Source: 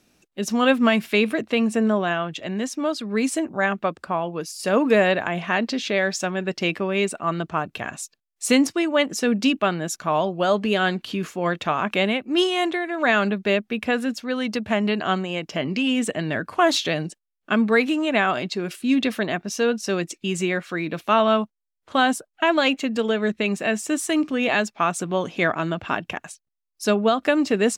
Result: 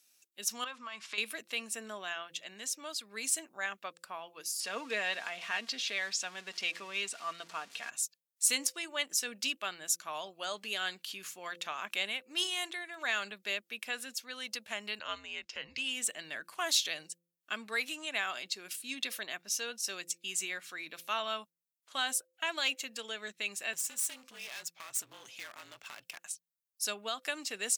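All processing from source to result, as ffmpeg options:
-filter_complex "[0:a]asettb=1/sr,asplit=3[a][b][c];[a]atrim=end=0.644[d];[b]atrim=start=0.64:end=1.18,asetpts=PTS-STARTPTS,afade=t=in:d=0.004:c=qsin,afade=t=out:st=0.536:d=0.004:c=qsin,lowpass=f=7k:w=0.5412,lowpass=f=7k:w=1.3066,equalizer=f=1.1k:t=o:w=0.63:g=14,acompressor=threshold=-22dB:ratio=12:attack=3.2:release=140:knee=1:detection=peak[e];[c]atrim=start=1.176[f];[d][e]acrossfade=d=0.004:c1=hsin:c2=qsin[g];[g][f]acrossfade=d=0.004:c1=qsin:c2=hsin,asettb=1/sr,asplit=3[h][i][j];[h]atrim=end=4.604[k];[i]atrim=start=4.6:end=7.9,asetpts=PTS-STARTPTS,afade=t=in:d=0.004:c=qsin,afade=t=out:st=3.296:d=0.004:c=qsin,aeval=exprs='val(0)+0.5*0.0188*sgn(val(0))':c=same,highpass=150,lowpass=5.3k,aecho=1:1:4.3:0.35,atrim=end_sample=145530[l];[j]atrim=start=7.896[m];[k][l]acrossfade=d=0.004:c1=hsin:c2=qsin[n];[n][m]acrossfade=d=0.004:c1=qsin:c2=hsin,asettb=1/sr,asplit=3[o][p][q];[o]atrim=end=14.994[r];[p]atrim=start=14.99:end=15.78,asetpts=PTS-STARTPTS,afade=t=in:d=0.004:c=qsin,afade=t=out:st=0.786:d=0.004:c=qsin,lowpass=5.1k,afreqshift=-110[s];[q]atrim=start=15.776[t];[r][s]acrossfade=d=0.004:c1=hsin:c2=qsin[u];[u][t]acrossfade=d=0.004:c1=qsin:c2=hsin,asettb=1/sr,asplit=3[v][w][x];[v]atrim=end=23.734[y];[w]atrim=start=23.73:end=26.19,asetpts=PTS-STARTPTS,afade=t=in:d=0.004:c=qsin,afade=t=out:st=2.456:d=0.004:c=qsin,afreqshift=-47,acompressor=threshold=-25dB:ratio=5:attack=3.2:release=140:knee=1:detection=peak,aeval=exprs='clip(val(0),-1,0.0178)':c=same[z];[x]atrim=start=26.186[aa];[y][z]acrossfade=d=0.004:c1=hsin:c2=qsin[ab];[ab][aa]acrossfade=d=0.004:c1=qsin:c2=hsin,aderivative,bandreject=f=171.4:t=h:w=4,bandreject=f=342.8:t=h:w=4,bandreject=f=514.2:t=h:w=4"

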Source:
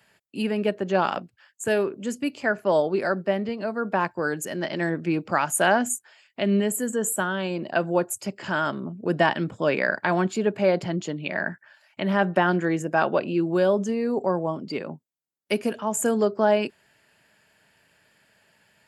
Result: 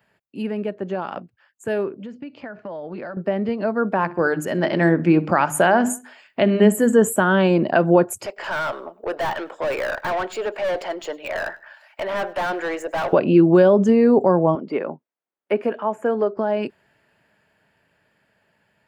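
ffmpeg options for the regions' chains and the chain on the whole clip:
-filter_complex "[0:a]asettb=1/sr,asplit=3[a][b][c];[a]atrim=end=2.004[d];[b]atrim=start=2:end=3.17,asetpts=PTS-STARTPTS,afade=t=in:d=0.004:c=qsin,afade=t=out:st=1.166:d=0.004:c=qsin,lowpass=f=4.7k:w=0.5412,lowpass=f=4.7k:w=1.3066,bandreject=f=390:w=6.5,acompressor=threshold=-31dB:ratio=16:attack=3.2:release=140:knee=1:detection=peak[e];[c]atrim=start=3.166[f];[d][e]acrossfade=d=0.004:c1=hsin:c2=qsin[g];[g][f]acrossfade=d=0.004:c1=qsin:c2=hsin,asettb=1/sr,asplit=3[h][i][j];[h]atrim=end=3.974[k];[i]atrim=start=3.97:end=7.02,asetpts=PTS-STARTPTS,afade=t=in:d=0.004:c=qsin,afade=t=out:st=3.046:d=0.004:c=qsin,bandreject=f=50:t=h:w=6,bandreject=f=100:t=h:w=6,bandreject=f=150:t=h:w=6,bandreject=f=200:t=h:w=6,bandreject=f=250:t=h:w=6,bandreject=f=300:t=h:w=6,bandreject=f=350:t=h:w=6,bandreject=f=400:t=h:w=6,asplit=2[l][m];[m]adelay=64,lowpass=f=4.7k:p=1,volume=-20dB,asplit=2[n][o];[o]adelay=64,lowpass=f=4.7k:p=1,volume=0.43,asplit=2[p][q];[q]adelay=64,lowpass=f=4.7k:p=1,volume=0.43[r];[l][n][p][r]amix=inputs=4:normalize=0,atrim=end_sample=134505[s];[j]atrim=start=7.016[t];[k][s]acrossfade=d=0.004:c1=hsin:c2=qsin[u];[u][t]acrossfade=d=0.004:c1=qsin:c2=hsin,asettb=1/sr,asplit=3[v][w][x];[v]atrim=end=8.264[y];[w]atrim=start=8.26:end=13.13,asetpts=PTS-STARTPTS,afade=t=in:d=0.004:c=qsin,afade=t=out:st=4.866:d=0.004:c=qsin,highpass=f=510:w=0.5412,highpass=f=510:w=1.3066,aeval=exprs='(tanh(39.8*val(0)+0.1)-tanh(0.1))/39.8':c=same,aecho=1:1:101|202:0.0708|0.0227,atrim=end_sample=214767[z];[x]atrim=start=13.126[aa];[y][z]acrossfade=d=0.004:c1=hsin:c2=qsin[ab];[ab][aa]acrossfade=d=0.004:c1=qsin:c2=hsin,asettb=1/sr,asplit=3[ac][ad][ae];[ac]atrim=end=14.554[af];[ad]atrim=start=14.55:end=16.37,asetpts=PTS-STARTPTS,afade=t=in:d=0.004:c=qsin,afade=t=out:st=1.816:d=0.004:c=qsin,highpass=120,bass=f=250:g=-13,treble=f=4k:g=-14,acrossover=split=2600[ag][ah];[ah]acompressor=threshold=-47dB:ratio=4:attack=1:release=60[ai];[ag][ai]amix=inputs=2:normalize=0[aj];[ae]atrim=start=16.366[ak];[af][aj]acrossfade=d=0.004:c1=hsin:c2=qsin[al];[al][ak]acrossfade=d=0.004:c1=qsin:c2=hsin,equalizer=f=8.3k:w=0.34:g=-13,alimiter=limit=-16.5dB:level=0:latency=1:release=140,dynaudnorm=f=390:g=21:m=13dB"

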